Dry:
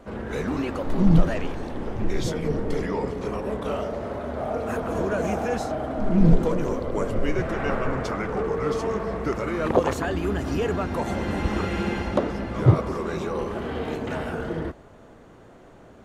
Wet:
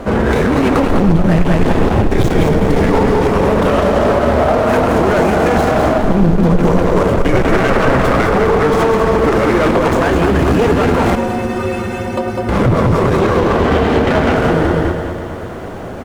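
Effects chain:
running median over 9 samples
0:13.19–0:14.36: low-pass filter 5,700 Hz 12 dB per octave
repeating echo 201 ms, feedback 37%, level −6 dB
downward compressor, threshold −20 dBFS, peak gain reduction 11 dB
0:11.15–0:12.49: stiff-string resonator 110 Hz, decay 0.44 s, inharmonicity 0.03
asymmetric clip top −32 dBFS, bottom −16 dBFS
boost into a limiter +24 dB
feedback echo at a low word length 106 ms, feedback 80%, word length 7 bits, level −13.5 dB
level −3 dB

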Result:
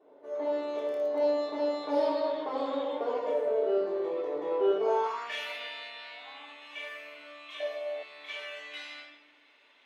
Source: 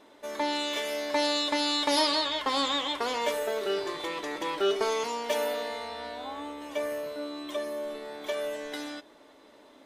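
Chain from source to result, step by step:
rectangular room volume 490 cubic metres, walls mixed, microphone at 3.4 metres
band-pass filter sweep 500 Hz → 2,500 Hz, 0:04.80–0:05.40
0:00.77–0:01.20: surface crackle 26 per second −38 dBFS
0:07.60–0:08.03: flat-topped bell 610 Hz +15 dB 1 octave
level −3 dB

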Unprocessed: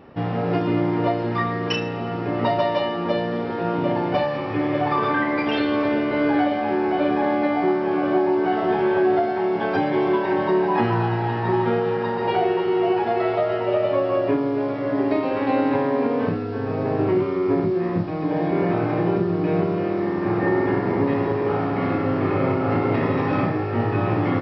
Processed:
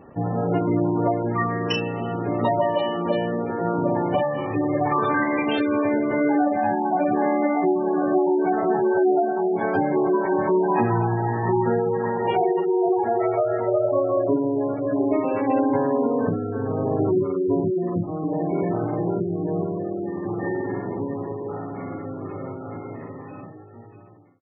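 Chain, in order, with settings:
fade-out on the ending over 7.68 s
gate on every frequency bin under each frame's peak −20 dB strong
0:06.56–0:07.13: comb filter 1.2 ms, depth 74%

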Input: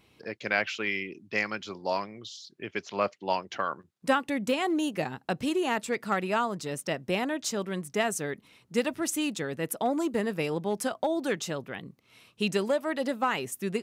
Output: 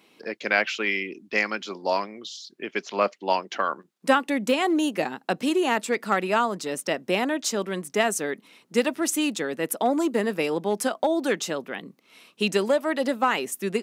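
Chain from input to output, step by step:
high-pass filter 200 Hz 24 dB per octave
level +5 dB

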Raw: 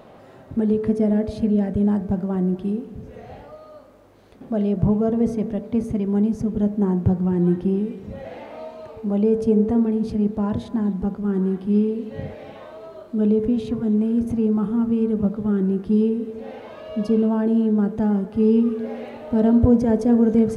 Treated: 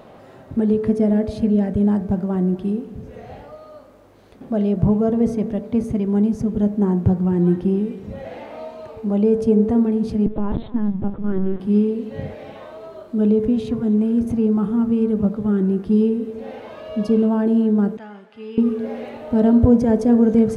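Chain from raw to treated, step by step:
0:10.26–0:11.60: linear-prediction vocoder at 8 kHz pitch kept
0:17.97–0:18.58: resonant band-pass 2,500 Hz, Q 1.2
level +2 dB

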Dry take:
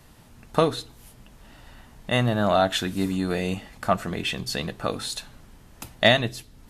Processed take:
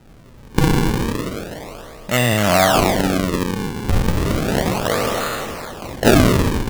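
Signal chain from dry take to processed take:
peak hold with a decay on every bin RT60 2.84 s
0:03.51–0:04.29: low-pass filter 1,800 Hz 24 dB per octave
sample-and-hold swept by an LFO 39×, swing 160% 0.33 Hz
level +3 dB

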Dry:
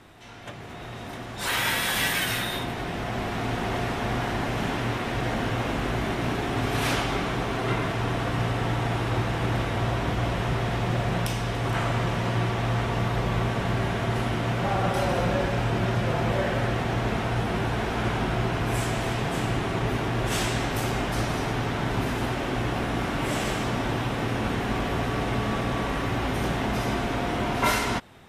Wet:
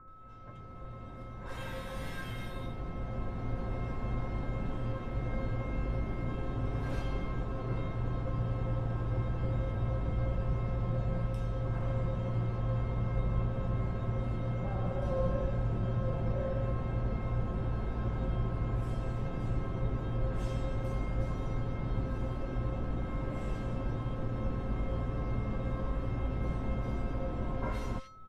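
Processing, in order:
spectral tilt −4 dB per octave
steady tone 1,300 Hz −34 dBFS
tuned comb filter 530 Hz, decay 0.28 s, harmonics all, mix 90%
multiband delay without the direct sound lows, highs 80 ms, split 2,100 Hz

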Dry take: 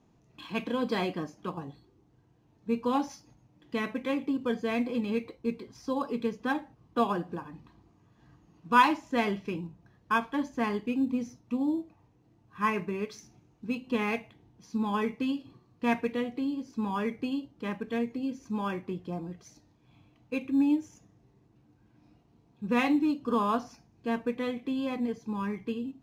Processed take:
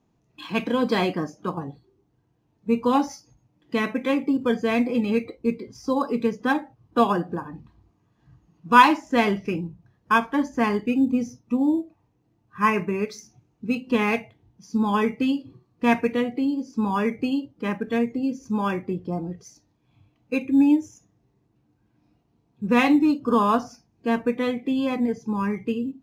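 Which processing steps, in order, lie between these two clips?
noise reduction from a noise print of the clip's start 11 dB
level +7.5 dB

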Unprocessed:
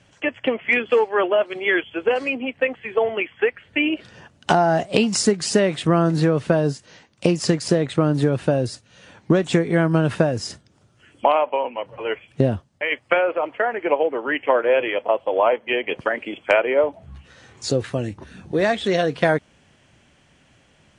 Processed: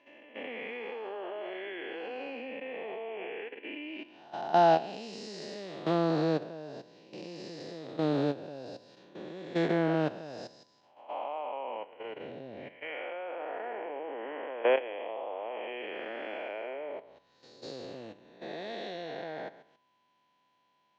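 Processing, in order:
spectrum smeared in time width 366 ms
output level in coarse steps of 11 dB
loudspeaker in its box 250–5,700 Hz, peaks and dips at 800 Hz +6 dB, 1,300 Hz −4 dB, 4,000 Hz +8 dB
steady tone 1,000 Hz −61 dBFS
expander for the loud parts 1.5 to 1, over −41 dBFS

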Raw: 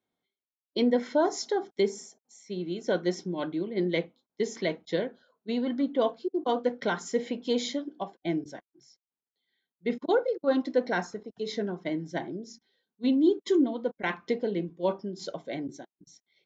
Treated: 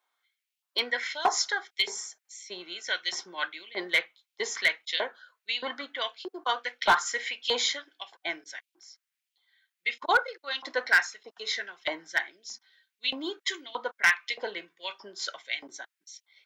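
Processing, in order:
auto-filter high-pass saw up 1.6 Hz 920–3,000 Hz
hard clipping −22 dBFS, distortion −15 dB
level +7.5 dB

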